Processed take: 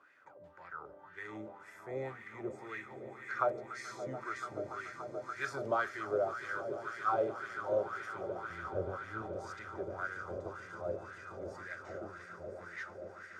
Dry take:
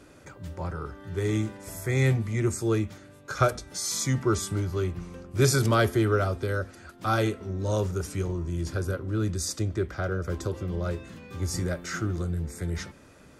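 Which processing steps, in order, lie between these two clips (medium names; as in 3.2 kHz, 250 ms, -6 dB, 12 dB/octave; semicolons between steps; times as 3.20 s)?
8.50–9.22 s: RIAA curve playback; echo with a slow build-up 144 ms, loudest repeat 8, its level -15 dB; wah-wah 1.9 Hz 560–1900 Hz, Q 4.6; trim +1 dB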